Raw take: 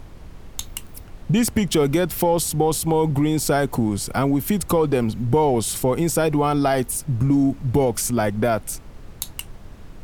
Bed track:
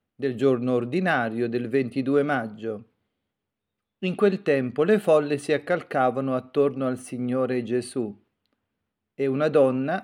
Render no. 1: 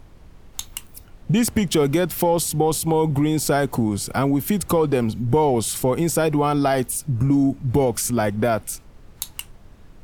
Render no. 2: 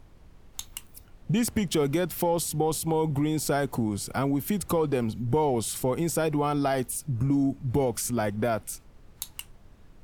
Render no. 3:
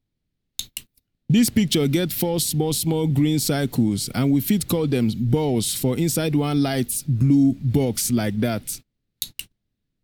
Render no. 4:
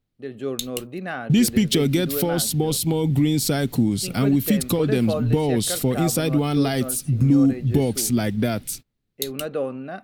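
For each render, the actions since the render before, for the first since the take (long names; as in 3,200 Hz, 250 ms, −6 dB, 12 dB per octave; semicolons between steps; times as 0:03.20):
noise reduction from a noise print 6 dB
level −6.5 dB
noise gate −41 dBFS, range −29 dB; graphic EQ with 10 bands 125 Hz +7 dB, 250 Hz +8 dB, 1,000 Hz −7 dB, 2,000 Hz +4 dB, 4,000 Hz +11 dB, 16,000 Hz +10 dB
mix in bed track −7.5 dB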